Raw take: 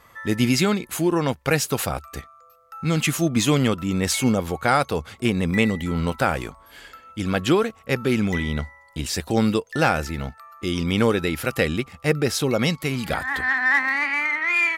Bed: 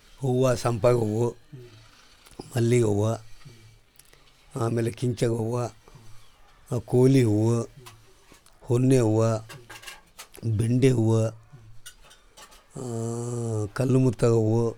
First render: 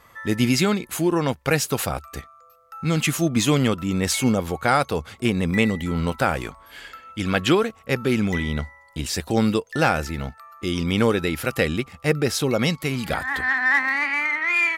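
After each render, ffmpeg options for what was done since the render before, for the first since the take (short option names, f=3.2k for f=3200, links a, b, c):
-filter_complex "[0:a]asettb=1/sr,asplit=3[a][b][c];[a]atrim=end=6.444[d];[b]atrim=start=6.44:end=7.55,asetpts=PTS-STARTPTS,afade=t=in:d=0.004:c=qsin,afade=t=out:st=1.106:d=0.004:c=qsin,equalizer=f=2.3k:t=o:w=2:g=4.5[e];[c]atrim=start=7.546[f];[d][e]acrossfade=d=0.004:c1=hsin:c2=qsin[g];[g][f]acrossfade=d=0.004:c1=qsin:c2=hsin"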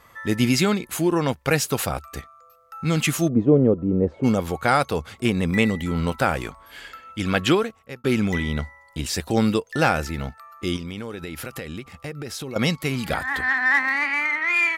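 -filter_complex "[0:a]asplit=3[a][b][c];[a]afade=t=out:st=3.28:d=0.02[d];[b]lowpass=f=480:t=q:w=2.3,afade=t=in:st=3.28:d=0.02,afade=t=out:st=4.23:d=0.02[e];[c]afade=t=in:st=4.23:d=0.02[f];[d][e][f]amix=inputs=3:normalize=0,asettb=1/sr,asplit=3[g][h][i];[g]atrim=end=10.764[j];[h]atrim=start=10.76:end=12.56,asetpts=PTS-STARTPTS,afade=t=in:d=0.004:c=qsin,afade=t=out:st=1.796:d=0.004:c=qsin,acompressor=threshold=-29dB:ratio=8:attack=3.2:release=140:knee=1:detection=peak[k];[i]atrim=start=12.556[l];[j][k]acrossfade=d=0.004:c1=hsin:c2=qsin[m];[m][l]acrossfade=d=0.004:c1=qsin:c2=hsin,asplit=2[n][o];[n]atrim=end=8.04,asetpts=PTS-STARTPTS,afade=t=out:st=7.5:d=0.54[p];[o]atrim=start=8.04,asetpts=PTS-STARTPTS,afade=t=in:d=0.004:c=hsin[q];[p][q]concat=n=2:v=0:a=1"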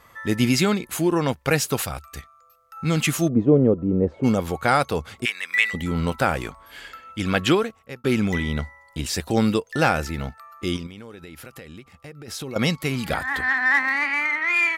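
-filter_complex "[0:a]asettb=1/sr,asplit=3[a][b][c];[a]atrim=end=1.824[d];[b]atrim=start=1.82:end=2.77,asetpts=PTS-STARTPTS,afade=t=in:d=0.004:c=qsin,afade=t=out:st=0.946:d=0.004:c=qsin,equalizer=f=410:w=0.39:g=-8[e];[c]atrim=start=2.766[f];[d][e]acrossfade=d=0.004:c1=hsin:c2=qsin[g];[g][f]acrossfade=d=0.004:c1=qsin:c2=hsin,asplit=3[h][i][j];[h]afade=t=out:st=5.24:d=0.02[k];[i]highpass=f=1.8k:t=q:w=2.2,afade=t=in:st=5.24:d=0.02,afade=t=out:st=5.73:d=0.02[l];[j]afade=t=in:st=5.73:d=0.02[m];[k][l][m]amix=inputs=3:normalize=0,asplit=3[n][o][p];[n]atrim=end=10.872[q];[o]atrim=start=10.868:end=12.282,asetpts=PTS-STARTPTS,volume=-7.5dB[r];[p]atrim=start=12.278[s];[q][r]acrossfade=d=0.004:c1=hsin:c2=hsin[t];[t][s]acrossfade=d=0.004:c1=hsin:c2=hsin"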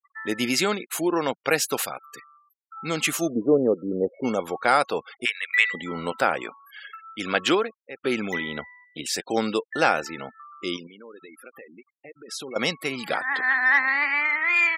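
-af "highpass=340,afftfilt=real='re*gte(hypot(re,im),0.0141)':imag='im*gte(hypot(re,im),0.0141)':win_size=1024:overlap=0.75"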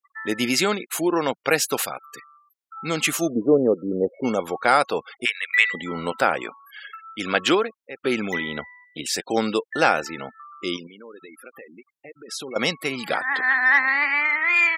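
-af "volume=2dB"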